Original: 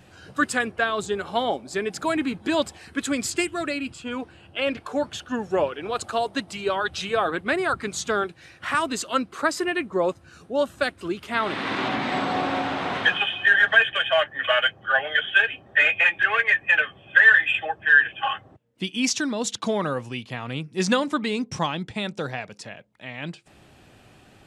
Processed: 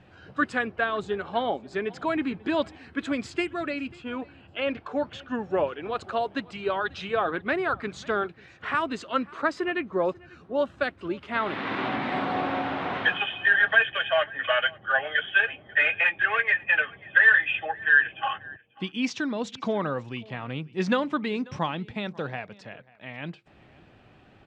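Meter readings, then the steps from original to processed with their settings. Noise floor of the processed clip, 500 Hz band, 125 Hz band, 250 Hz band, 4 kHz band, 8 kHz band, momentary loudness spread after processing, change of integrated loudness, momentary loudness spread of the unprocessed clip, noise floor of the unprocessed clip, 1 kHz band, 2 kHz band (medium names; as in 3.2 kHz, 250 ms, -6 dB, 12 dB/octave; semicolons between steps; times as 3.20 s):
-55 dBFS, -2.5 dB, -2.5 dB, -2.5 dB, -6.5 dB, under -15 dB, 14 LU, -3.0 dB, 15 LU, -53 dBFS, -2.5 dB, -3.0 dB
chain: low-pass 3 kHz 12 dB/octave; delay 540 ms -23.5 dB; trim -2.5 dB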